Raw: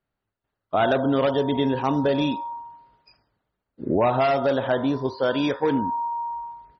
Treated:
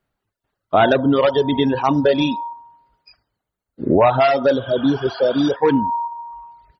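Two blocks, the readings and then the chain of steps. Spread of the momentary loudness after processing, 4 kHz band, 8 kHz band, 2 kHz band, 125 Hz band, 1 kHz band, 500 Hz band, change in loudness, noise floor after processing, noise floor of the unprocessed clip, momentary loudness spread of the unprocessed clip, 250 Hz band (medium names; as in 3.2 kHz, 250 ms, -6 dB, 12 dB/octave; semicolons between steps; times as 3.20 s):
13 LU, +6.0 dB, no reading, +5.0 dB, +4.0 dB, +5.0 dB, +6.0 dB, +6.0 dB, -82 dBFS, -83 dBFS, 11 LU, +5.5 dB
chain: spectral replace 4.59–5.53 s, 640–3400 Hz before; reverb removal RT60 1.5 s; trim +7.5 dB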